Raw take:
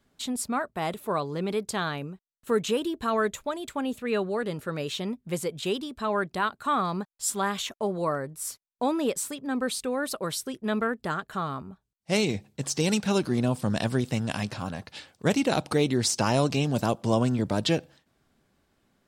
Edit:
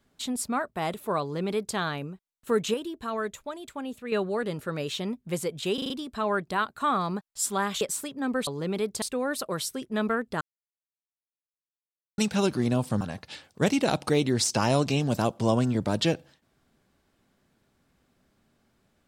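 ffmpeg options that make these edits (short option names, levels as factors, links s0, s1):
-filter_complex "[0:a]asplit=13[s0][s1][s2][s3][s4][s5][s6][s7][s8][s9][s10][s11][s12];[s0]atrim=end=2.742[s13];[s1]atrim=start=2.738:end=4.122,asetpts=PTS-STARTPTS,volume=0.531[s14];[s2]atrim=start=4.118:end=5.782[s15];[s3]atrim=start=5.738:end=5.782[s16];[s4]atrim=start=5.738:end=5.782[s17];[s5]atrim=start=5.738:end=5.782[s18];[s6]atrim=start=5.738:end=7.652[s19];[s7]atrim=start=9.078:end=9.742[s20];[s8]atrim=start=1.208:end=1.762[s21];[s9]atrim=start=9.738:end=11.13,asetpts=PTS-STARTPTS,afade=t=out:st=1.388:d=0.004:c=hsin[s22];[s10]atrim=start=11.13:end=12.9,asetpts=PTS-STARTPTS,volume=0[s23];[s11]atrim=start=12.9:end=13.732,asetpts=PTS-STARTPTS,afade=t=in:d=0.004:c=hsin[s24];[s12]atrim=start=14.648[s25];[s13][s14]acrossfade=d=0.004:c1=hsin:c2=hsin[s26];[s26][s15]acrossfade=d=0.004:c1=hsin:c2=hsin[s27];[s27][s16]acrossfade=d=0.004:c1=hsin:c2=hsin[s28];[s28][s17]acrossfade=d=0.004:c1=hsin:c2=hsin[s29];[s29][s18]acrossfade=d=0.004:c1=hsin:c2=hsin[s30];[s30][s19]acrossfade=d=0.004:c1=hsin:c2=hsin[s31];[s31][s20]acrossfade=d=0.004:c1=hsin:c2=hsin[s32];[s32][s21]acrossfade=d=0.004:c1=hsin:c2=hsin[s33];[s22][s23][s24]concat=n=3:v=0:a=1[s34];[s33][s34]acrossfade=d=0.004:c1=hsin:c2=hsin[s35];[s35][s25]acrossfade=d=0.004:c1=hsin:c2=hsin"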